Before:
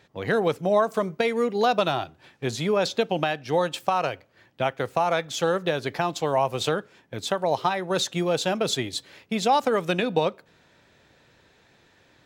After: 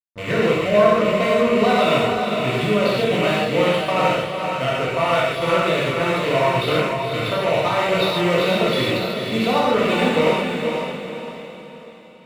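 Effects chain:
loose part that buzzes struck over −36 dBFS, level −19 dBFS
Butterworth low-pass 4,400 Hz
hum removal 65.47 Hz, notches 32
slack as between gear wheels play −29 dBFS
notch comb filter 820 Hz
feedback delay with all-pass diffusion 469 ms, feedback 43%, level −5 dB
reverb whose tail is shaped and stops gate 180 ms flat, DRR −6 dB

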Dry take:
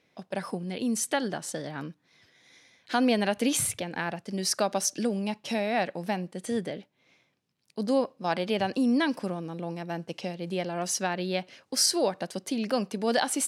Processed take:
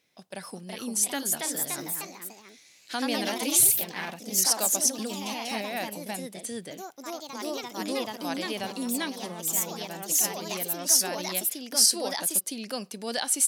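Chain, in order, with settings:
delay with pitch and tempo change per echo 403 ms, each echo +2 semitones, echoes 3
first-order pre-emphasis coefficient 0.8
level +6 dB

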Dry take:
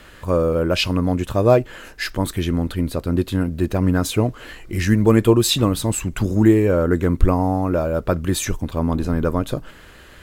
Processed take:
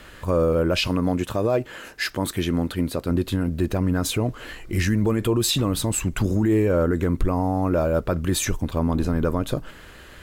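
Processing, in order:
0:00.87–0:03.11: high-pass filter 140 Hz 6 dB per octave
brickwall limiter −12.5 dBFS, peak gain reduction 10.5 dB

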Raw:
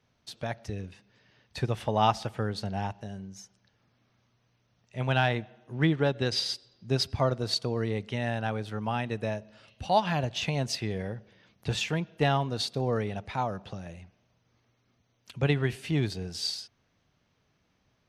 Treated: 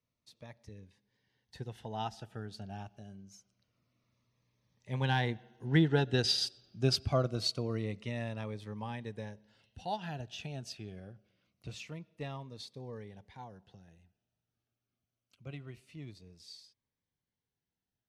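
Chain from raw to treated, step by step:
source passing by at 0:06.27, 5 m/s, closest 5.5 metres
phaser whose notches keep moving one way falling 0.25 Hz

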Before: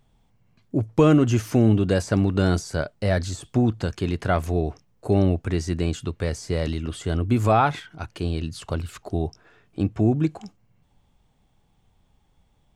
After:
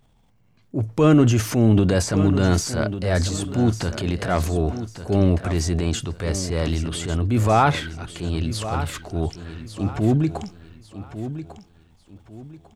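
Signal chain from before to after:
transient designer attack −6 dB, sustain +7 dB
on a send: repeating echo 1,148 ms, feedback 31%, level −11.5 dB
on the sum: level +2 dB

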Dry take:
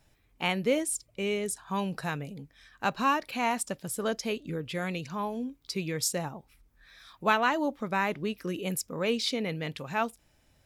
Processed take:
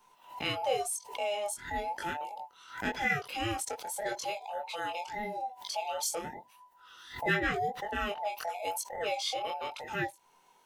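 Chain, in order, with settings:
frequency inversion band by band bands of 1,000 Hz
in parallel at 0 dB: downward compressor, threshold −42 dBFS, peak gain reduction 21 dB
0:00.50–0:01.09: on the sum: parametric band 110 Hz +11 dB 0.83 octaves
chorus effect 0.9 Hz, delay 20 ms, depth 4.2 ms
low-shelf EQ 200 Hz −6 dB
background raised ahead of every attack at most 120 dB per second
level −2 dB

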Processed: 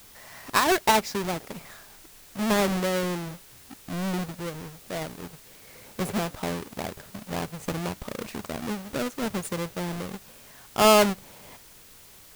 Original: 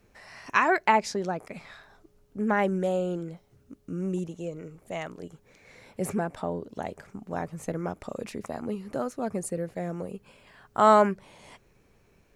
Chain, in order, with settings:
each half-wave held at its own peak
bit-depth reduction 8 bits, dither triangular
level −3 dB

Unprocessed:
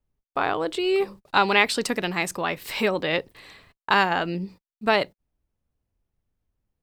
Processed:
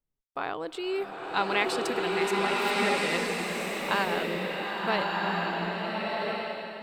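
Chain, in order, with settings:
parametric band 67 Hz −13.5 dB 0.71 octaves
slow-attack reverb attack 1,380 ms, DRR −3.5 dB
level −8.5 dB

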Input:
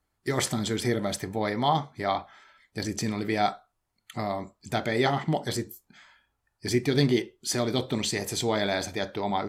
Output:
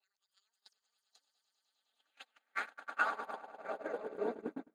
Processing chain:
played backwards from end to start
wrong playback speed 7.5 ips tape played at 15 ips
downward compressor 6 to 1, threshold −32 dBFS, peak gain reduction 13.5 dB
echo that builds up and dies away 103 ms, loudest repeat 8, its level −8.5 dB
band-pass filter sweep 4,600 Hz → 290 Hz, 0:01.60–0:04.60
noise gate −38 dBFS, range −41 dB
level +5 dB

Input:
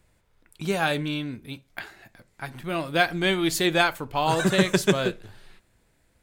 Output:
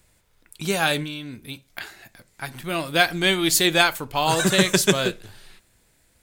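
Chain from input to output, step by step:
high-shelf EQ 3,100 Hz +10 dB
0:01.03–0:01.81: downward compressor 6 to 1, threshold −31 dBFS, peak gain reduction 7.5 dB
level +1 dB

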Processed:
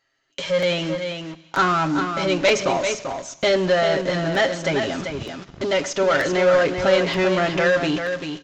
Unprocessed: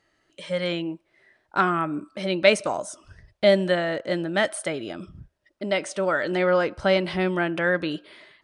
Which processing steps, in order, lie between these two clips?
comb filter 7.4 ms, depth 74%
leveller curve on the samples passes 2
in parallel at −7.5 dB: fuzz pedal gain 36 dB, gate −41 dBFS
on the sum: single-tap delay 391 ms −7 dB
on a send at −18 dB: convolution reverb RT60 1.0 s, pre-delay 13 ms
on the sum: downsampling to 16,000 Hz
regular buffer underruns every 0.93 s, samples 256, repeat, from 0:00.62
one half of a high-frequency compander encoder only
level −7.5 dB

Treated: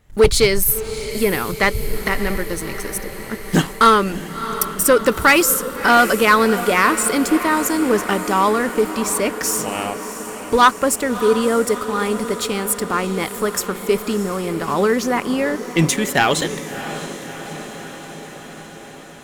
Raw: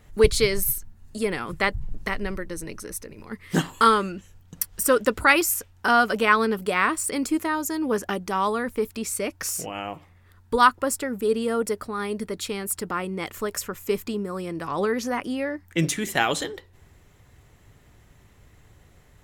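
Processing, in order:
leveller curve on the samples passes 2
feedback delay with all-pass diffusion 652 ms, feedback 69%, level −12 dB

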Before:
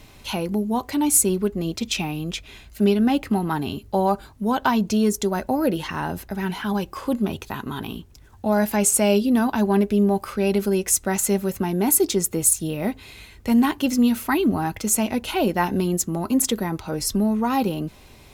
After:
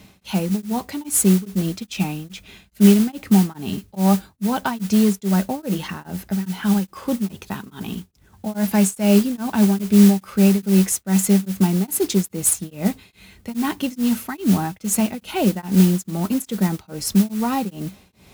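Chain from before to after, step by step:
high-pass filter 58 Hz
parametric band 190 Hz +14.5 dB 0.25 octaves
notch filter 1,000 Hz, Q 21
noise that follows the level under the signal 17 dB
tremolo along a rectified sine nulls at 2.4 Hz

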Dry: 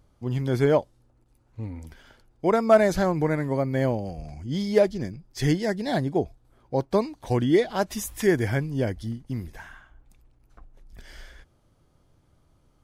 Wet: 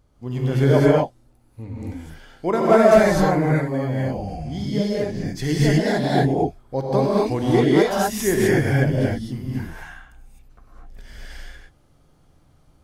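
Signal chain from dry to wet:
0:03.36–0:04.95: downward compressor 5 to 1, threshold −26 dBFS, peak gain reduction 11.5 dB
reverb whose tail is shaped and stops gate 280 ms rising, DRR −6.5 dB
level −1 dB

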